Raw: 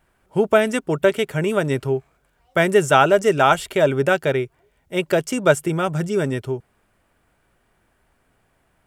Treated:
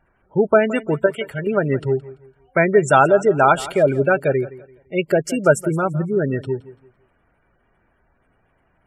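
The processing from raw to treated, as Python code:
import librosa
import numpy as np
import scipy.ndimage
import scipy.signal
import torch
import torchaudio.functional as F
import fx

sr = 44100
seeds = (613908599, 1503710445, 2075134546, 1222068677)

y = fx.spec_gate(x, sr, threshold_db=-20, keep='strong')
y = fx.peak_eq(y, sr, hz=280.0, db=-9.5, octaves=2.3, at=(1.06, 1.47))
y = fx.echo_feedback(y, sr, ms=169, feedback_pct=31, wet_db=-18.0)
y = F.gain(torch.from_numpy(y), 1.5).numpy()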